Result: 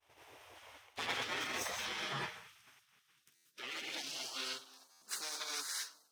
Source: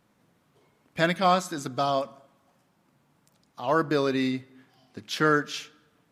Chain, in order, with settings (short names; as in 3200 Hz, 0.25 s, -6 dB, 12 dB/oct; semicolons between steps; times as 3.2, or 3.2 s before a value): minimum comb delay 0.35 ms; low shelf 280 Hz +3 dB; non-linear reverb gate 0.23 s rising, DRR -2.5 dB; limiter -19.5 dBFS, peak gain reduction 11.5 dB; high-pass sweep 170 Hz -> 2100 Hz, 1.71–4.72; expander -56 dBFS; high shelf 5700 Hz -7 dB; notches 50/100/150 Hz; reverse; compressor 6:1, threshold -37 dBFS, peak gain reduction 15.5 dB; reverse; spectral gate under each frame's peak -20 dB weak; stuck buffer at 3.35/4.91, samples 512, times 8; gain +12.5 dB